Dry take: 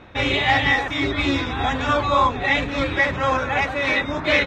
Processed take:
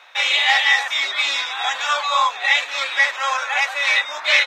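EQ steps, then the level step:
high-pass filter 700 Hz 24 dB per octave
high-shelf EQ 2,300 Hz +10 dB
high-shelf EQ 5,700 Hz +6 dB
−1.5 dB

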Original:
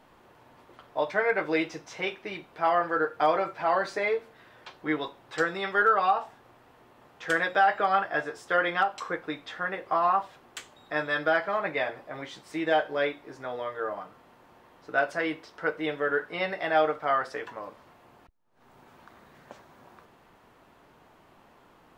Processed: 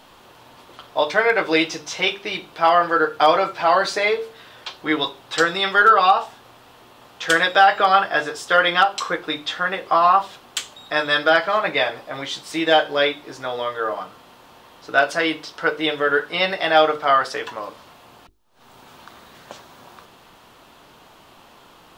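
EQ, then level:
parametric band 1,300 Hz +4 dB 1.1 octaves
high shelf with overshoot 2,500 Hz +7.5 dB, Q 1.5
mains-hum notches 50/100/150/200/250/300/350/400/450 Hz
+7.5 dB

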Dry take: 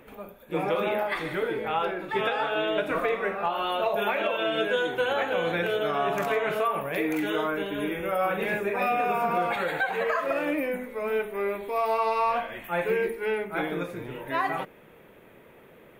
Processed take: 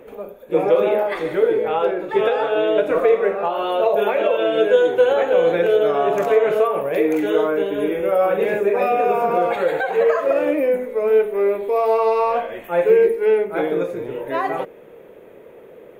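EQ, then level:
parametric band 470 Hz +13.5 dB 1.2 octaves
parametric band 6,600 Hz +4.5 dB 0.25 octaves
0.0 dB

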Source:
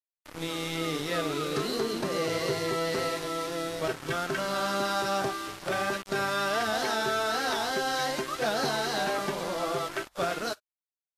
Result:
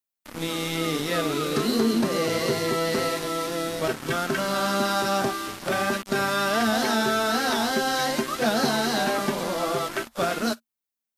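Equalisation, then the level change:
parametric band 230 Hz +13 dB 0.25 octaves
high-shelf EQ 12,000 Hz +8 dB
+4.0 dB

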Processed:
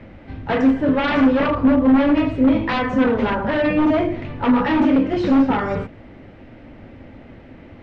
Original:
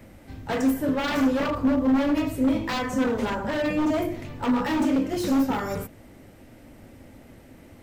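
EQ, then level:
Chebyshev low-pass filter 2,900 Hz, order 2
high-frequency loss of the air 95 metres
+8.0 dB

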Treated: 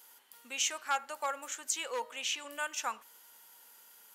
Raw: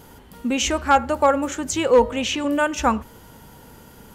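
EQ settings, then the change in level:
high-pass filter 660 Hz 6 dB per octave
first difference
high-shelf EQ 3,200 Hz −10.5 dB
+3.5 dB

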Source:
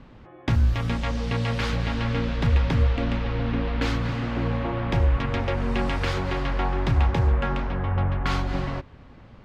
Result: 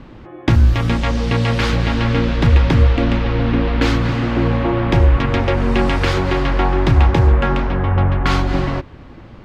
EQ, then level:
parametric band 330 Hz +7.5 dB 0.29 octaves
+8.5 dB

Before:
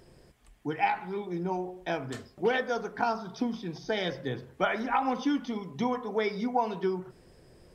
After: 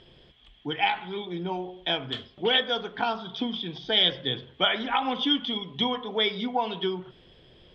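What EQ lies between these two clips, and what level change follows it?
low-pass with resonance 3,300 Hz, resonance Q 16
0.0 dB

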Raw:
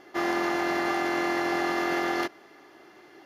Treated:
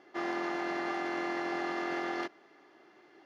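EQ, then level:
high-pass filter 140 Hz 12 dB per octave
high-frequency loss of the air 75 metres
−7.0 dB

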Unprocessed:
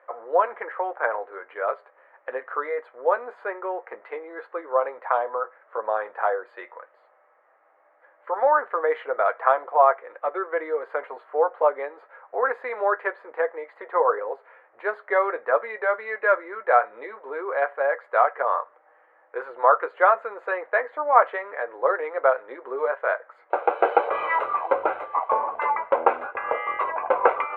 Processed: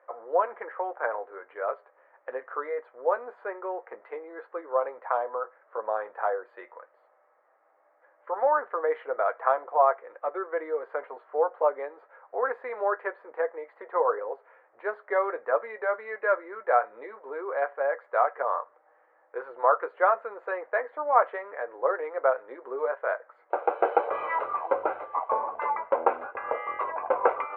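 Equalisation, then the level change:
high-shelf EQ 2,400 Hz −11 dB
−3.0 dB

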